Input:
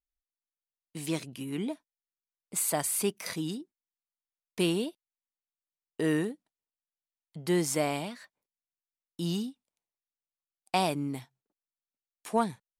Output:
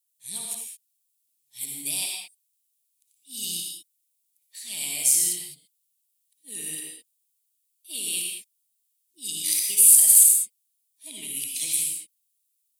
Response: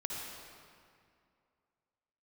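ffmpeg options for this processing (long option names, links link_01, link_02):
-filter_complex "[0:a]areverse,acompressor=threshold=-31dB:ratio=6,aexciter=amount=15.9:drive=8:freq=2300,highshelf=frequency=7200:width_type=q:width=1.5:gain=6.5[link_01];[1:a]atrim=start_sample=2205,afade=type=out:start_time=0.27:duration=0.01,atrim=end_sample=12348[link_02];[link_01][link_02]afir=irnorm=-1:irlink=0,volume=-14.5dB"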